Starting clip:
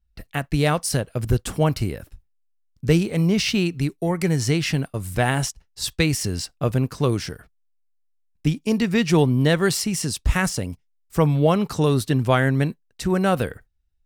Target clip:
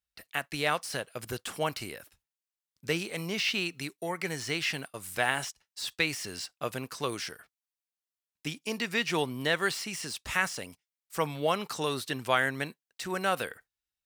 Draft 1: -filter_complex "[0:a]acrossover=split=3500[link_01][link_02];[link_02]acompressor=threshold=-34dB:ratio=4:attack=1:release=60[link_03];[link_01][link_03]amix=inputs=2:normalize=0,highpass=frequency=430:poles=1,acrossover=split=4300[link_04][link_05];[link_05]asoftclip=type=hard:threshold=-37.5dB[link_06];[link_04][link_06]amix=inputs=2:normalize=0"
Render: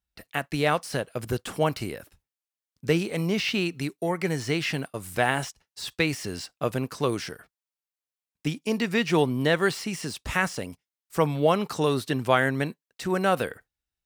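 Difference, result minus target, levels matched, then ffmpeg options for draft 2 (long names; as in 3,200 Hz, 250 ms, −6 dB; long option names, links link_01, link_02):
2,000 Hz band −3.0 dB
-filter_complex "[0:a]acrossover=split=3500[link_01][link_02];[link_02]acompressor=threshold=-34dB:ratio=4:attack=1:release=60[link_03];[link_01][link_03]amix=inputs=2:normalize=0,highpass=frequency=1500:poles=1,acrossover=split=4300[link_04][link_05];[link_05]asoftclip=type=hard:threshold=-37.5dB[link_06];[link_04][link_06]amix=inputs=2:normalize=0"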